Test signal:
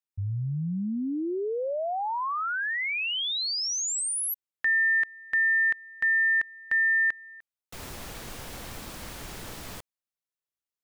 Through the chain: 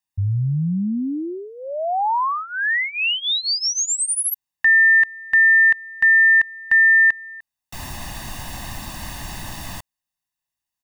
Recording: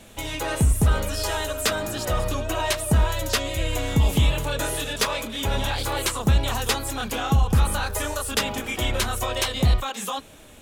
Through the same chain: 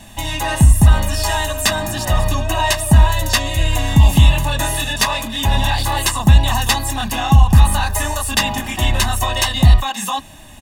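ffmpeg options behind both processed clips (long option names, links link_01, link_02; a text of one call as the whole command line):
ffmpeg -i in.wav -af "aecho=1:1:1.1:0.82,volume=5dB" out.wav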